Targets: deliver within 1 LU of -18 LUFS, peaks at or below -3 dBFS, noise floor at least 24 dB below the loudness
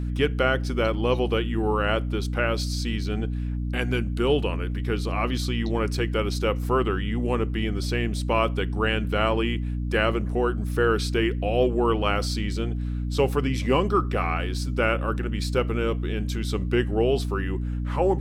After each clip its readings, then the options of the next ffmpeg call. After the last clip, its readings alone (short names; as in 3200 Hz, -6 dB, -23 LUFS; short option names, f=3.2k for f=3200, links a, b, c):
hum 60 Hz; harmonics up to 300 Hz; hum level -25 dBFS; loudness -25.5 LUFS; peak -8.0 dBFS; loudness target -18.0 LUFS
-> -af "bandreject=f=60:t=h:w=4,bandreject=f=120:t=h:w=4,bandreject=f=180:t=h:w=4,bandreject=f=240:t=h:w=4,bandreject=f=300:t=h:w=4"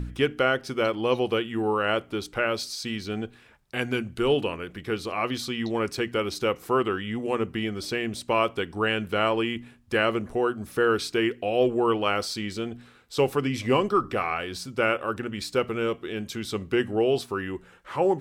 hum none; loudness -27.0 LUFS; peak -8.5 dBFS; loudness target -18.0 LUFS
-> -af "volume=9dB,alimiter=limit=-3dB:level=0:latency=1"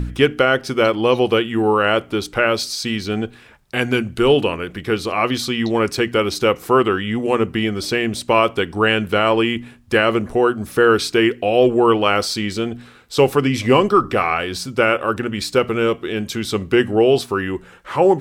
loudness -18.0 LUFS; peak -3.0 dBFS; noise floor -45 dBFS